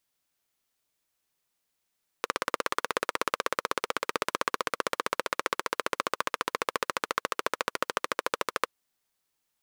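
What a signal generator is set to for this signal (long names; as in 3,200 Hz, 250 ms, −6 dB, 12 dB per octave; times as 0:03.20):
pulse-train model of a single-cylinder engine, changing speed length 6.43 s, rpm 2,000, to 1,600, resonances 510/1,100 Hz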